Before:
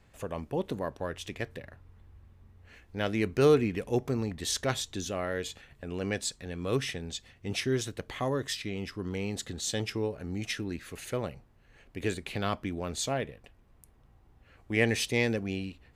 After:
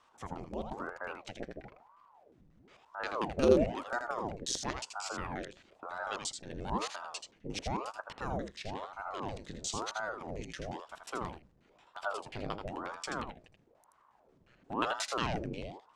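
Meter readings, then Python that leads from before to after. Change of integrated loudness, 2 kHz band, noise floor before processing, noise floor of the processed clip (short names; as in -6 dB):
-5.0 dB, -5.5 dB, -61 dBFS, -67 dBFS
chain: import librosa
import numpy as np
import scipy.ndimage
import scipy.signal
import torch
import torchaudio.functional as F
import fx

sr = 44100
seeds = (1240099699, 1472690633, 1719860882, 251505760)

p1 = fx.low_shelf(x, sr, hz=170.0, db=-3.0)
p2 = fx.level_steps(p1, sr, step_db=22)
p3 = p1 + (p2 * 10.0 ** (-1.0 / 20.0))
p4 = fx.filter_lfo_lowpass(p3, sr, shape='square', hz=5.6, low_hz=460.0, high_hz=6900.0, q=1.4)
p5 = p4 + 10.0 ** (-6.5 / 20.0) * np.pad(p4, (int(81 * sr / 1000.0), 0))[:len(p4)]
p6 = fx.ring_lfo(p5, sr, carrier_hz=580.0, swing_pct=90, hz=1.0)
y = p6 * 10.0 ** (-5.5 / 20.0)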